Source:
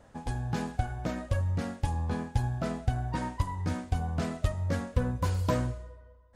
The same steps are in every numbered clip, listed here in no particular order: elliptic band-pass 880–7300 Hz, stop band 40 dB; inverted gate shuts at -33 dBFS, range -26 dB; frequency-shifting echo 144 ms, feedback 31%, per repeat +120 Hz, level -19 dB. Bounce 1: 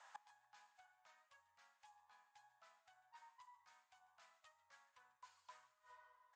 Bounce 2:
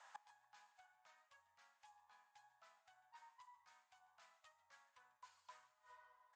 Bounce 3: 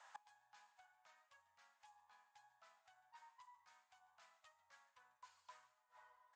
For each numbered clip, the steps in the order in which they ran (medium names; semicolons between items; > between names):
inverted gate > elliptic band-pass > frequency-shifting echo; inverted gate > frequency-shifting echo > elliptic band-pass; frequency-shifting echo > inverted gate > elliptic band-pass